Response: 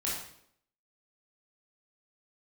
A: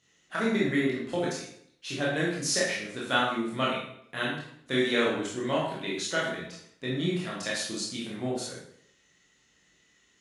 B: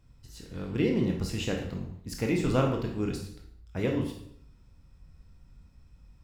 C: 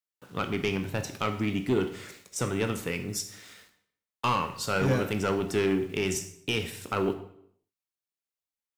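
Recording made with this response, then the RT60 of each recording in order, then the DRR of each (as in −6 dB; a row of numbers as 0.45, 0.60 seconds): A; 0.70, 0.70, 0.70 seconds; −6.5, 1.0, 7.0 decibels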